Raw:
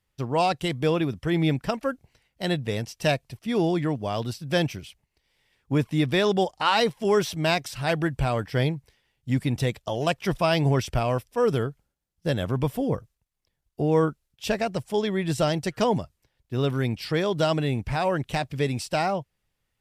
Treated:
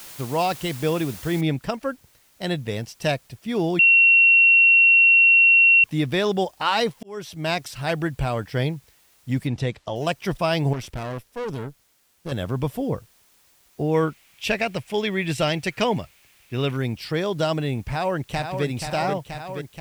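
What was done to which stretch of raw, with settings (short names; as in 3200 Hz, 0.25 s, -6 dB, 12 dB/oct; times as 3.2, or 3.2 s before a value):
1.41 noise floor step -41 dB -59 dB
3.79–5.84 bleep 2730 Hz -11 dBFS
7.03–7.59 fade in
9.47–9.96 air absorption 69 m
10.73–12.32 tube stage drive 26 dB, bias 0.75
13.94–16.77 bell 2400 Hz +11.5 dB 0.81 oct
17.88–18.65 echo throw 0.48 s, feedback 80%, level -6.5 dB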